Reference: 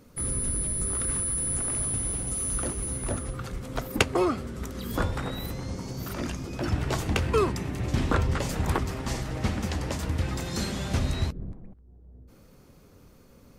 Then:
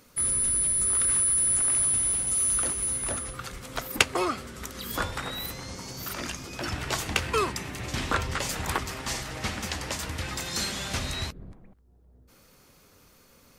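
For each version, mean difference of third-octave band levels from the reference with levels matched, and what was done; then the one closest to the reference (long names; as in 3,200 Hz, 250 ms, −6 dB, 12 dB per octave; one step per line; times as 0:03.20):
4.5 dB: tilt shelving filter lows −7 dB, about 750 Hz
in parallel at −11.5 dB: soft clipping −14 dBFS, distortion −17 dB
on the sum: level −3 dB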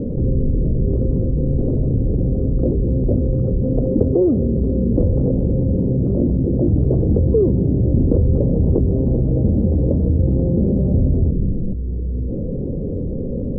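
17.5 dB: Chebyshev low-pass filter 520 Hz, order 4
envelope flattener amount 70%
level +8 dB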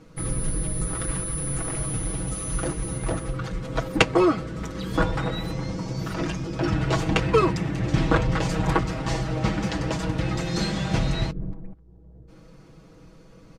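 3.5 dB: high-frequency loss of the air 73 metres
comb filter 6.2 ms, depth 81%
level +3.5 dB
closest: third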